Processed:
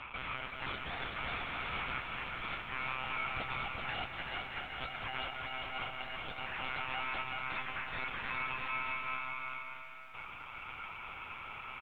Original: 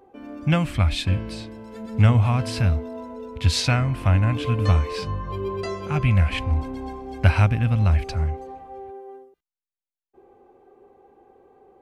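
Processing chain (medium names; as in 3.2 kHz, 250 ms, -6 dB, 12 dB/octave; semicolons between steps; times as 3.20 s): spectral levelling over time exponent 0.6; reverb removal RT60 0.66 s; three-band isolator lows -22 dB, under 350 Hz, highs -18 dB, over 2.6 kHz; de-hum 332.6 Hz, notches 3; compressor with a negative ratio -35 dBFS, ratio -0.5; ring modulator 1.8 kHz; monotone LPC vocoder at 8 kHz 130 Hz; distance through air 78 m; bouncing-ball echo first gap 380 ms, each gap 0.65×, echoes 5; bit-crushed delay 183 ms, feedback 80%, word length 11-bit, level -13 dB; trim -3.5 dB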